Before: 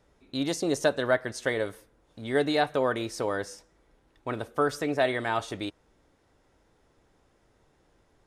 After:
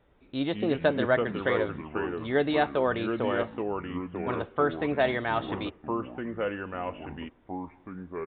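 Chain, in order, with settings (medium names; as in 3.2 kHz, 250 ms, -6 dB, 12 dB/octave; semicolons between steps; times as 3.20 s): resampled via 8 kHz; ever faster or slower copies 111 ms, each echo -4 st, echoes 3, each echo -6 dB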